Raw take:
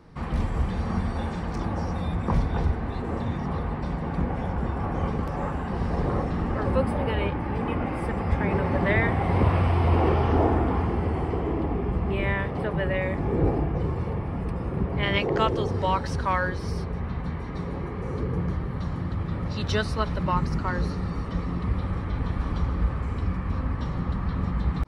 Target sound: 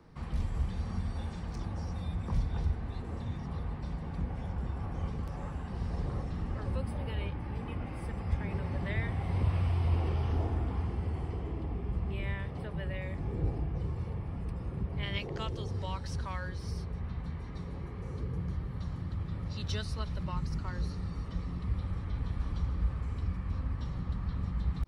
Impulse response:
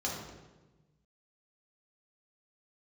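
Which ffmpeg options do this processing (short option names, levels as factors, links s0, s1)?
-filter_complex "[0:a]acrossover=split=150|3000[s0][s1][s2];[s1]acompressor=threshold=0.002:ratio=1.5[s3];[s0][s3][s2]amix=inputs=3:normalize=0,volume=0.531"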